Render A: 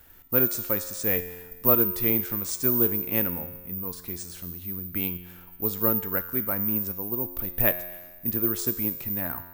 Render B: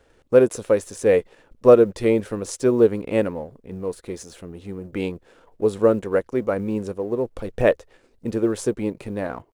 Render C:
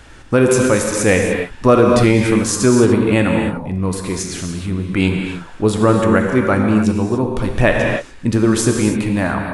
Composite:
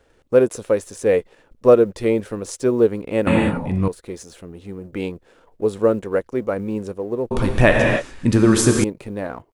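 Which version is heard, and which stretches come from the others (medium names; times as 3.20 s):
B
3.27–3.88 s: from C
7.31–8.84 s: from C
not used: A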